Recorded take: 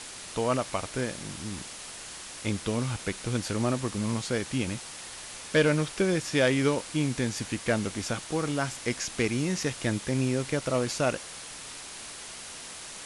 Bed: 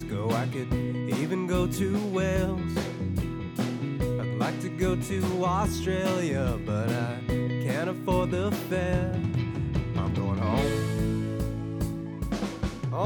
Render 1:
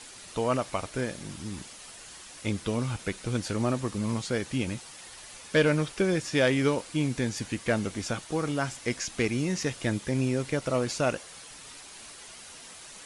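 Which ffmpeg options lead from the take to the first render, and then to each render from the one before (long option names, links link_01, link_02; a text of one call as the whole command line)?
ffmpeg -i in.wav -af "afftdn=noise_reduction=7:noise_floor=-43" out.wav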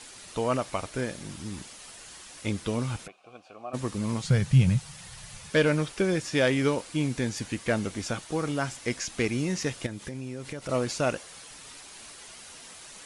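ffmpeg -i in.wav -filter_complex "[0:a]asplit=3[link_01][link_02][link_03];[link_01]afade=type=out:start_time=3.06:duration=0.02[link_04];[link_02]asplit=3[link_05][link_06][link_07];[link_05]bandpass=frequency=730:width_type=q:width=8,volume=0dB[link_08];[link_06]bandpass=frequency=1090:width_type=q:width=8,volume=-6dB[link_09];[link_07]bandpass=frequency=2440:width_type=q:width=8,volume=-9dB[link_10];[link_08][link_09][link_10]amix=inputs=3:normalize=0,afade=type=in:start_time=3.06:duration=0.02,afade=type=out:start_time=3.73:duration=0.02[link_11];[link_03]afade=type=in:start_time=3.73:duration=0.02[link_12];[link_04][link_11][link_12]amix=inputs=3:normalize=0,asettb=1/sr,asplit=3[link_13][link_14][link_15];[link_13]atrim=end=4.244[link_16];[link_14]atrim=start=4.24:end=5.5,asetpts=PTS-STARTPTS,afade=type=in:duration=0.004:curve=qsin,afade=type=out:start_time=1.256:duration=0.004:curve=qsin,lowshelf=frequency=210:width_type=q:width=3:gain=10.5[link_17];[link_15]atrim=start=5.496[link_18];[link_16][link_17]acrossfade=duration=0.004:curve1=hsin:curve2=qsin[link_19];[link_19][link_18]acrossfade=duration=0.004:curve1=qsin:curve2=hsin,asettb=1/sr,asplit=3[link_20][link_21][link_22];[link_20]atrim=end=9.864[link_23];[link_21]atrim=start=9.86:end=10.69,asetpts=PTS-STARTPTS,afade=type=in:duration=0.004:curve=qsin,afade=type=out:start_time=0.826:duration=0.004:curve=qsin,acompressor=threshold=-33dB:ratio=5:attack=3.2:release=140:knee=1:detection=peak[link_24];[link_22]atrim=start=10.686[link_25];[link_23][link_24]acrossfade=duration=0.004:curve1=hsin:curve2=qsin[link_26];[link_26][link_25]acrossfade=duration=0.004:curve1=qsin:curve2=hsin" out.wav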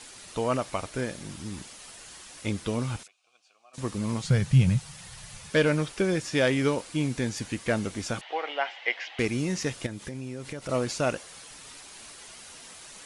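ffmpeg -i in.wav -filter_complex "[0:a]asettb=1/sr,asplit=3[link_01][link_02][link_03];[link_01]atrim=end=3.034[link_04];[link_02]atrim=start=3.03:end=3.78,asetpts=PTS-STARTPTS,afade=type=in:duration=0.004:curve=qsin,afade=type=out:start_time=0.746:duration=0.004:curve=qsin,bandpass=frequency=6700:width_type=q:width=1[link_05];[link_03]atrim=start=3.776[link_06];[link_04][link_05]acrossfade=duration=0.004:curve1=hsin:curve2=qsin[link_07];[link_07][link_06]acrossfade=duration=0.004:curve1=qsin:curve2=hsin,asettb=1/sr,asplit=3[link_08][link_09][link_10];[link_08]atrim=end=8.214[link_11];[link_09]atrim=start=8.21:end=9.19,asetpts=PTS-STARTPTS,afade=type=in:duration=0.004:curve=qsin,afade=type=out:start_time=0.976:duration=0.004:curve=qsin,highpass=frequency=490:width=0.5412,highpass=frequency=490:width=1.3066,equalizer=frequency=780:width_type=q:width=4:gain=9,equalizer=frequency=1200:width_type=q:width=4:gain=-4,equalizer=frequency=2000:width_type=q:width=4:gain=9,equalizer=frequency=3000:width_type=q:width=4:gain=9,lowpass=frequency=3700:width=0.5412,lowpass=frequency=3700:width=1.3066[link_12];[link_10]atrim=start=9.186[link_13];[link_11][link_12]acrossfade=duration=0.004:curve1=hsin:curve2=qsin[link_14];[link_14][link_13]acrossfade=duration=0.004:curve1=qsin:curve2=hsin" out.wav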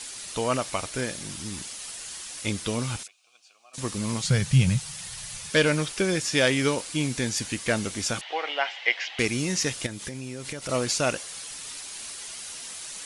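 ffmpeg -i in.wav -af "highshelf=frequency=2300:gain=10" out.wav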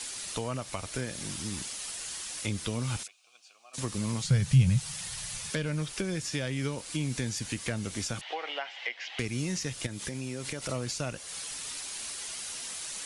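ffmpeg -i in.wav -filter_complex "[0:a]acrossover=split=170[link_01][link_02];[link_02]acompressor=threshold=-32dB:ratio=10[link_03];[link_01][link_03]amix=inputs=2:normalize=0" out.wav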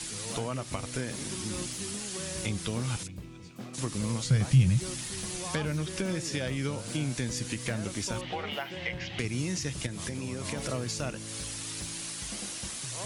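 ffmpeg -i in.wav -i bed.wav -filter_complex "[1:a]volume=-14dB[link_01];[0:a][link_01]amix=inputs=2:normalize=0" out.wav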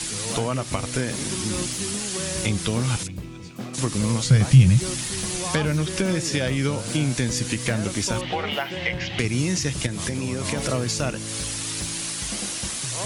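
ffmpeg -i in.wav -af "volume=8.5dB" out.wav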